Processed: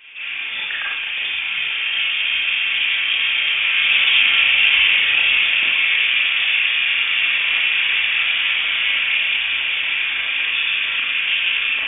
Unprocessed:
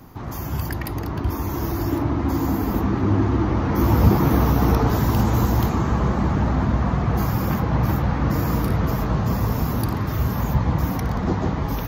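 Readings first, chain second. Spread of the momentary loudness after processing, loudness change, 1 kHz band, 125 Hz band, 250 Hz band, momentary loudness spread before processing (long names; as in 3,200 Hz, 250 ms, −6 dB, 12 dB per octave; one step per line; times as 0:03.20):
8 LU, +6.0 dB, −9.0 dB, below −35 dB, below −25 dB, 8 LU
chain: three-way crossover with the lows and the highs turned down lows −22 dB, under 520 Hz, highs −15 dB, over 2,200 Hz
four-comb reverb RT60 0.47 s, combs from 29 ms, DRR −4 dB
voice inversion scrambler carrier 3,500 Hz
level +8 dB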